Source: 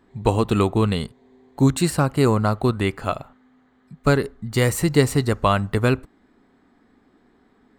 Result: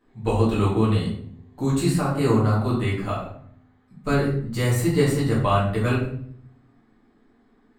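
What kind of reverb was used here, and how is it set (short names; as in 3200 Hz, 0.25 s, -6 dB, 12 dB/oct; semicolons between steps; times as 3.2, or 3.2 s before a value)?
shoebox room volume 100 m³, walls mixed, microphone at 2 m; gain -11.5 dB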